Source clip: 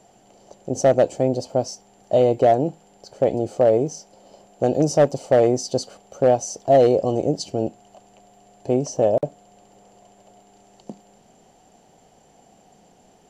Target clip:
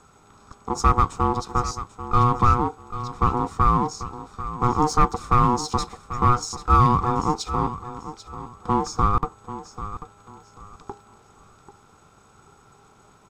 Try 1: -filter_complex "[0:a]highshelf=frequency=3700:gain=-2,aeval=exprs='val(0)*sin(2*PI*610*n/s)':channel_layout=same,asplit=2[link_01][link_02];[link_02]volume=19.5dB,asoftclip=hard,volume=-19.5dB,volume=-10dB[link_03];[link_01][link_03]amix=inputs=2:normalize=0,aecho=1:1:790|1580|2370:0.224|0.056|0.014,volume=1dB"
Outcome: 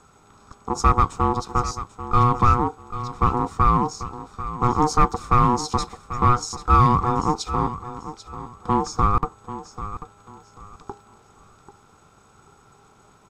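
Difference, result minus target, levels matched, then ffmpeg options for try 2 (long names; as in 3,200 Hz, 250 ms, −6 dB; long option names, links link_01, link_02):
gain into a clipping stage and back: distortion −5 dB
-filter_complex "[0:a]highshelf=frequency=3700:gain=-2,aeval=exprs='val(0)*sin(2*PI*610*n/s)':channel_layout=same,asplit=2[link_01][link_02];[link_02]volume=30dB,asoftclip=hard,volume=-30dB,volume=-10dB[link_03];[link_01][link_03]amix=inputs=2:normalize=0,aecho=1:1:790|1580|2370:0.224|0.056|0.014,volume=1dB"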